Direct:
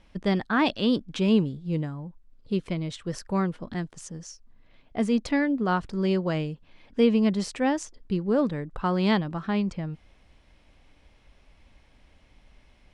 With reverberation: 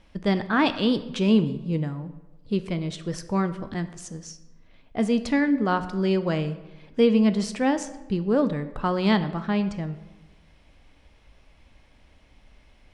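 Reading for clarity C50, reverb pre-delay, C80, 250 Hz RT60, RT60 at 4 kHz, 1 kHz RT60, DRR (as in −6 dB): 13.0 dB, 5 ms, 15.0 dB, 1.3 s, 0.75 s, 1.1 s, 10.5 dB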